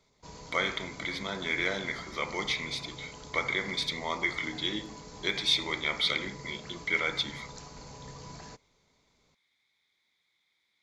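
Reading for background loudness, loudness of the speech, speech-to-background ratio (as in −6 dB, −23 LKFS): −46.0 LKFS, −31.0 LKFS, 15.0 dB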